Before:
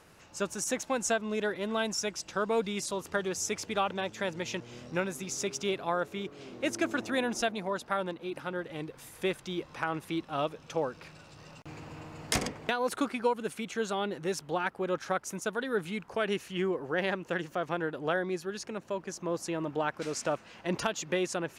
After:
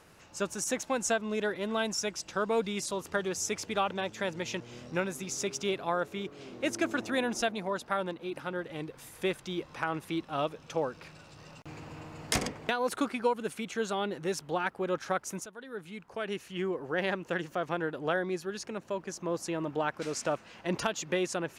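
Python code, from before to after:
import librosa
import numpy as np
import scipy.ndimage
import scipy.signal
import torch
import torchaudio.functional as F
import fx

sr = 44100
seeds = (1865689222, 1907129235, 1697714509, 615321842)

y = fx.edit(x, sr, fx.fade_in_from(start_s=15.46, length_s=1.65, floor_db=-15.5), tone=tone)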